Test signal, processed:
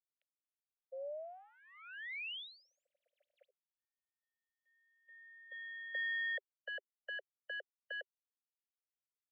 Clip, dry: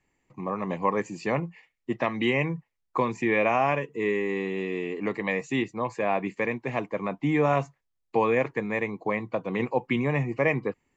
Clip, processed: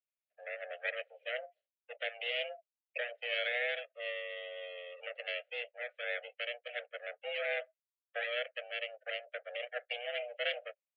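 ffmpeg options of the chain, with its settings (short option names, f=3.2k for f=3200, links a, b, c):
-af "aeval=exprs='abs(val(0))':c=same,afftdn=nr=20:nf=-40,aemphasis=mode=reproduction:type=riaa,highpass=f=220:t=q:w=0.5412,highpass=f=220:t=q:w=1.307,lowpass=f=3k:t=q:w=0.5176,lowpass=f=3k:t=q:w=0.7071,lowpass=f=3k:t=q:w=1.932,afreqshift=360,asuperstop=centerf=990:order=4:qfactor=0.56,volume=1dB"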